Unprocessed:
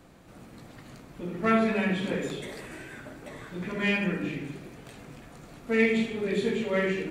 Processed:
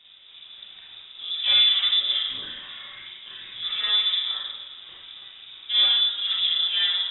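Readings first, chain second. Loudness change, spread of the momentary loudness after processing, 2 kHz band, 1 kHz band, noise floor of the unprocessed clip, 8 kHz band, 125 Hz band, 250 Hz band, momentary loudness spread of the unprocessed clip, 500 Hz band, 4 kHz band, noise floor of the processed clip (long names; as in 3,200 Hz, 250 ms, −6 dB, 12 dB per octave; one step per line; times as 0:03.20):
+7.5 dB, 22 LU, −3.5 dB, −7.0 dB, −50 dBFS, below −30 dB, below −20 dB, below −30 dB, 22 LU, below −20 dB, +24.0 dB, −48 dBFS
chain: treble cut that deepens with the level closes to 1,600 Hz, closed at −25 dBFS
low-shelf EQ 270 Hz +5 dB
tube saturation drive 22 dB, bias 0.7
four-comb reverb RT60 0.34 s, combs from 32 ms, DRR −3 dB
voice inversion scrambler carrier 3,700 Hz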